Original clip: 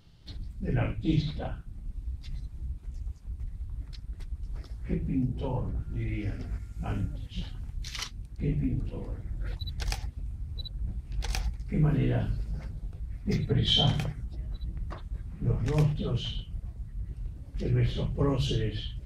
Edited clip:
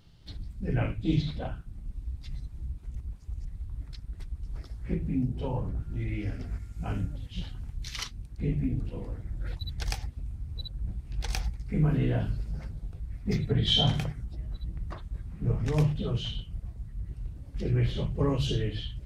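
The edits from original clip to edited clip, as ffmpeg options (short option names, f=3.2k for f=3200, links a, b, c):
-filter_complex "[0:a]asplit=3[a][b][c];[a]atrim=end=2.952[d];[b]atrim=start=2.948:end=3.452,asetpts=PTS-STARTPTS,areverse[e];[c]atrim=start=3.448[f];[d][e]acrossfade=d=0.004:c1=hsin:c2=hsin[g];[g][f]acrossfade=d=0.004:c1=hsin:c2=hsin"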